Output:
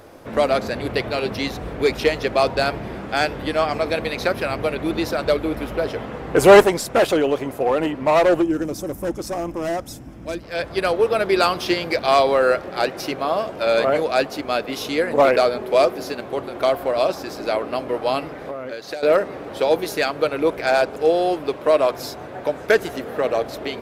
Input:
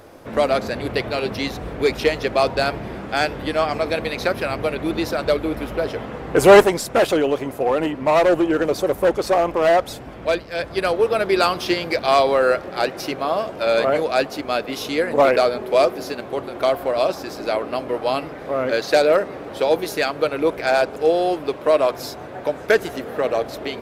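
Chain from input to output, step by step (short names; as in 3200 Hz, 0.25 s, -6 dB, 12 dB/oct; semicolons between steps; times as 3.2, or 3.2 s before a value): 8.42–10.43 spectral gain 350–4900 Hz -10 dB; 18.38–19.03 compressor 20:1, threshold -27 dBFS, peak gain reduction 17 dB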